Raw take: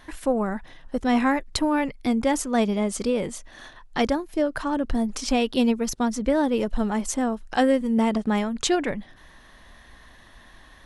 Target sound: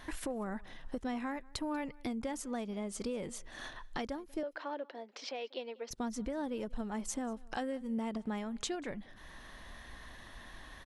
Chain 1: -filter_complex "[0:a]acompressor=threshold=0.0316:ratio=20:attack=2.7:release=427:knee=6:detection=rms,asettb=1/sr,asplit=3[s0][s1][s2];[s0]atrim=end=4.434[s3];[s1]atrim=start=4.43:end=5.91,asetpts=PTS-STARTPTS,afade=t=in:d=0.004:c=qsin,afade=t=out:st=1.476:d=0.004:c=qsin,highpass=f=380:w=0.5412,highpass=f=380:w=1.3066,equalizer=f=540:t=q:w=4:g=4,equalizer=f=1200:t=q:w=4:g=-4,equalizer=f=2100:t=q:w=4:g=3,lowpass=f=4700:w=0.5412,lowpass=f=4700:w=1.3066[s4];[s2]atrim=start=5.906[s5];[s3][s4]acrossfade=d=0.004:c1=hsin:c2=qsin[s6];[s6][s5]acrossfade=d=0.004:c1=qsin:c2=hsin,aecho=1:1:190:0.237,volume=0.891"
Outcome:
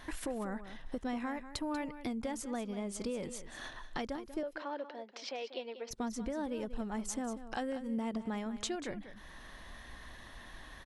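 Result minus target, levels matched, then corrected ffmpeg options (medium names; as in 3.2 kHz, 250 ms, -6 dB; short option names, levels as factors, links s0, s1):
echo-to-direct +12 dB
-filter_complex "[0:a]acompressor=threshold=0.0316:ratio=20:attack=2.7:release=427:knee=6:detection=rms,asettb=1/sr,asplit=3[s0][s1][s2];[s0]atrim=end=4.434[s3];[s1]atrim=start=4.43:end=5.91,asetpts=PTS-STARTPTS,afade=t=in:d=0.004:c=qsin,afade=t=out:st=1.476:d=0.004:c=qsin,highpass=f=380:w=0.5412,highpass=f=380:w=1.3066,equalizer=f=540:t=q:w=4:g=4,equalizer=f=1200:t=q:w=4:g=-4,equalizer=f=2100:t=q:w=4:g=3,lowpass=f=4700:w=0.5412,lowpass=f=4700:w=1.3066[s4];[s2]atrim=start=5.906[s5];[s3][s4]acrossfade=d=0.004:c1=hsin:c2=qsin[s6];[s6][s5]acrossfade=d=0.004:c1=qsin:c2=hsin,aecho=1:1:190:0.0596,volume=0.891"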